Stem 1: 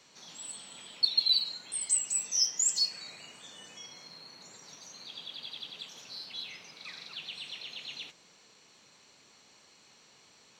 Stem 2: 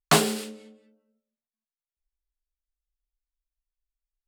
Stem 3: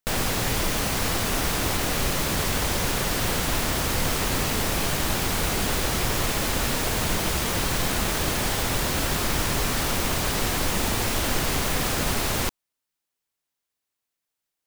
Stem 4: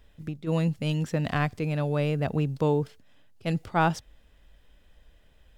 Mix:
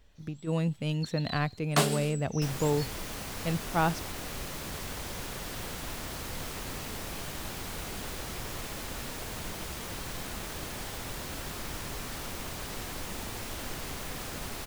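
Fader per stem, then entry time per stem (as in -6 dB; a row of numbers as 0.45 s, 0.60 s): -17.0 dB, -6.5 dB, -13.5 dB, -3.5 dB; 0.00 s, 1.65 s, 2.35 s, 0.00 s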